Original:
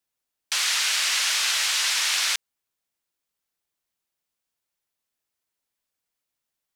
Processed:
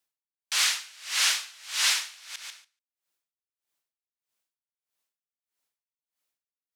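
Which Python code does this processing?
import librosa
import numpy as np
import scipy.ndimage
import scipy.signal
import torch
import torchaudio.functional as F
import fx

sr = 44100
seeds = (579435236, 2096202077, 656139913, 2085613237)

p1 = fx.low_shelf(x, sr, hz=270.0, db=-8.0)
p2 = 10.0 ** (-19.5 / 20.0) * np.tanh(p1 / 10.0 ** (-19.5 / 20.0))
p3 = p1 + F.gain(torch.from_numpy(p2), -11.0).numpy()
p4 = fx.echo_feedback(p3, sr, ms=144, feedback_pct=37, wet_db=-17.5)
y = p4 * 10.0 ** (-29 * (0.5 - 0.5 * np.cos(2.0 * np.pi * 1.6 * np.arange(len(p4)) / sr)) / 20.0)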